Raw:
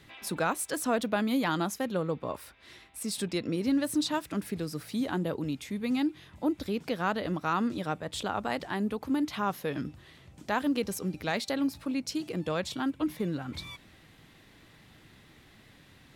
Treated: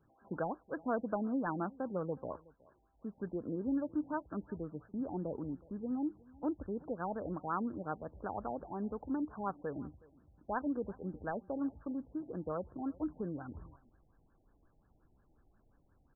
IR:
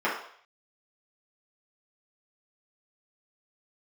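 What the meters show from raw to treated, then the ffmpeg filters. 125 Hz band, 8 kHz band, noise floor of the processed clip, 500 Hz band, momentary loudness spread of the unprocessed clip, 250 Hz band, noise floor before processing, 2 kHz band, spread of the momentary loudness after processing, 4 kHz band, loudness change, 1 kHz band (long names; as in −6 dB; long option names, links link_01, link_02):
−8.5 dB, below −40 dB, −71 dBFS, −6.5 dB, 8 LU, −7.5 dB, −57 dBFS, −13.0 dB, 8 LU, below −40 dB, −8.0 dB, −7.0 dB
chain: -filter_complex "[0:a]agate=range=-7dB:threshold=-43dB:ratio=16:detection=peak,asubboost=boost=5.5:cutoff=52,asplit=2[link_01][link_02];[link_02]aecho=0:1:369:0.0668[link_03];[link_01][link_03]amix=inputs=2:normalize=0,afftfilt=real='re*lt(b*sr/1024,850*pow(1800/850,0.5+0.5*sin(2*PI*5.6*pts/sr)))':imag='im*lt(b*sr/1024,850*pow(1800/850,0.5+0.5*sin(2*PI*5.6*pts/sr)))':win_size=1024:overlap=0.75,volume=-6dB"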